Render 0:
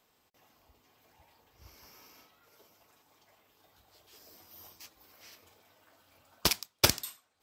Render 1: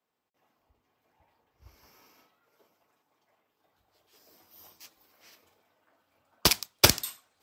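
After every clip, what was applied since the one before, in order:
multiband upward and downward expander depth 70%
level −1.5 dB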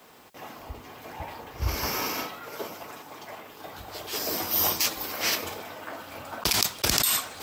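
envelope flattener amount 100%
level −9 dB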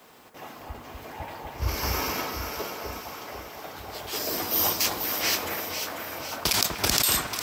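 delay that swaps between a low-pass and a high-pass 247 ms, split 2,100 Hz, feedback 73%, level −4 dB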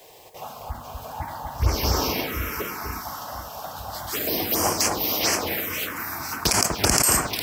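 phaser swept by the level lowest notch 210 Hz, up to 3,700 Hz, full sweep at −22 dBFS
level +7 dB

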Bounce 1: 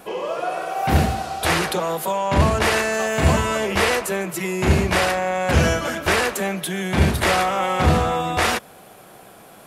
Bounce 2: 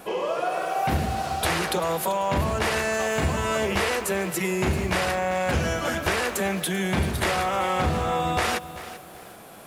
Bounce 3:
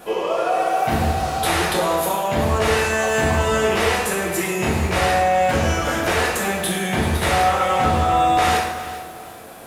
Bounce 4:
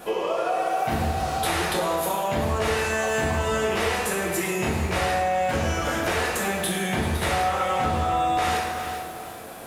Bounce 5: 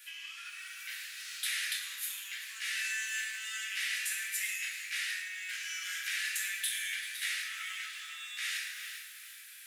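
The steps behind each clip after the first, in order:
downward compressor, threshold −21 dBFS, peak gain reduction 10 dB; feedback echo at a low word length 389 ms, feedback 35%, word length 7 bits, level −14 dB
dense smooth reverb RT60 1 s, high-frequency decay 0.8×, DRR −4 dB
downward compressor 2 to 1, threshold −25 dBFS, peak gain reduction 7 dB
Butterworth high-pass 1,700 Hz 48 dB per octave; level −4.5 dB

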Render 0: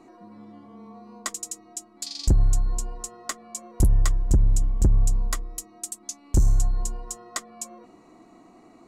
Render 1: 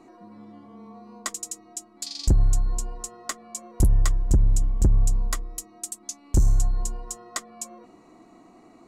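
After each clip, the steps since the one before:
no processing that can be heard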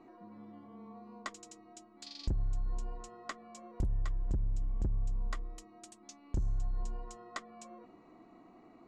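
downward compressor 6 to 1, threshold −24 dBFS, peak gain reduction 9 dB
low-pass filter 3,300 Hz 12 dB per octave
level −6 dB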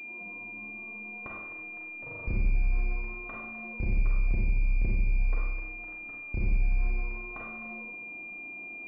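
four-comb reverb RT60 1 s, combs from 32 ms, DRR −3 dB
switching amplifier with a slow clock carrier 2,400 Hz

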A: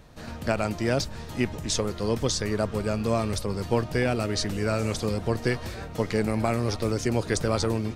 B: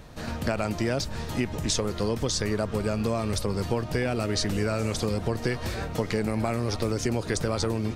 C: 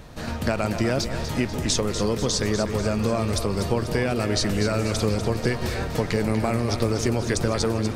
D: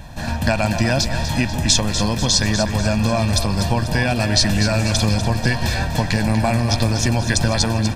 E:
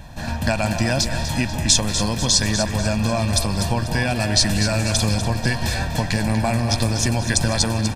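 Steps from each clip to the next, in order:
in parallel at −2.5 dB: brickwall limiter −16.5 dBFS, peak gain reduction 7.5 dB; on the sum: downward compressor 4 to 1, threshold −23 dBFS, peak gain reduction 7.5 dB
echo with a time of its own for lows and highs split 530 Hz, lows 166 ms, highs 244 ms, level −9 dB; level +3 dB
dynamic equaliser 4,000 Hz, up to +5 dB, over −39 dBFS, Q 0.75; comb filter 1.2 ms, depth 73%; level +3.5 dB
far-end echo of a speakerphone 190 ms, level −13 dB; dynamic equaliser 9,500 Hz, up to +7 dB, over −38 dBFS, Q 0.95; level −2.5 dB

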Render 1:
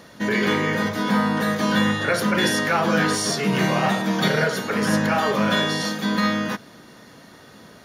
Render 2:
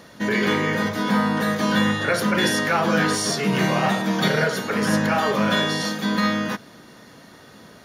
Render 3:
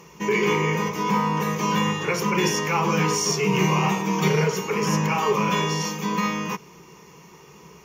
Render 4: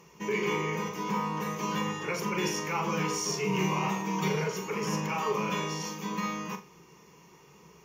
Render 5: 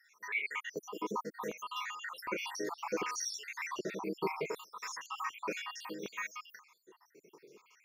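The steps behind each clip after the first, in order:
no processing that can be heard
EQ curve with evenly spaced ripples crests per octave 0.76, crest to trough 16 dB; level −3.5 dB
flutter between parallel walls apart 7.2 metres, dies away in 0.27 s; level −8.5 dB
time-frequency cells dropped at random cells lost 70%; auto-filter high-pass square 0.66 Hz 350–1,600 Hz; level −3 dB

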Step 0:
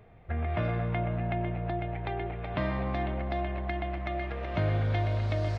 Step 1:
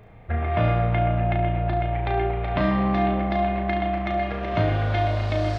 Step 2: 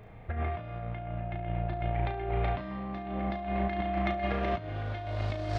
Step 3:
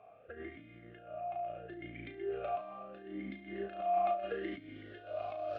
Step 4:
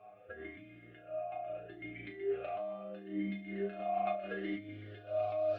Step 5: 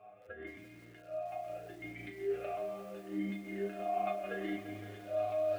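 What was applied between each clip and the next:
flutter between parallel walls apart 6.1 metres, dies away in 0.48 s; level +6 dB
compressor whose output falls as the input rises −26 dBFS, ratio −0.5; level −5.5 dB
formant filter swept between two vowels a-i 0.75 Hz; level +4 dB
stiff-string resonator 100 Hz, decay 0.24 s, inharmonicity 0.002; level +9.5 dB
feedback echo at a low word length 171 ms, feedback 80%, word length 9 bits, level −12 dB

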